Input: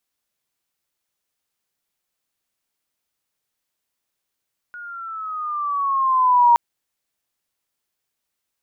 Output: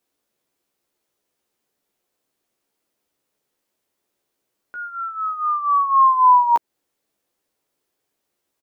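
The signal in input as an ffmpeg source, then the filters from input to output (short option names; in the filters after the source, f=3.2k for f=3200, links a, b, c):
-f lavfi -i "aevalsrc='pow(10,(-9+24*(t/1.82-1))/20)*sin(2*PI*1450*1.82/(-7.5*log(2)/12)*(exp(-7.5*log(2)/12*t/1.82)-1))':d=1.82:s=44100"
-filter_complex "[0:a]equalizer=f=380:t=o:w=2.1:g=12,alimiter=limit=-11dB:level=0:latency=1:release=177,asplit=2[a][b];[b]adelay=14,volume=-5dB[c];[a][c]amix=inputs=2:normalize=0"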